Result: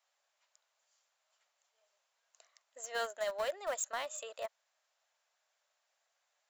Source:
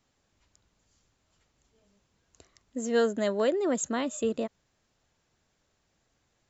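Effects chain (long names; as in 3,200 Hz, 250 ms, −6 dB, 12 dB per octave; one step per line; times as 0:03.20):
Chebyshev high-pass filter 600 Hz, order 4
brickwall limiter −25 dBFS, peak gain reduction 6 dB
in parallel at −8 dB: centre clipping without the shift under −31 dBFS
on the sum: level −4 dB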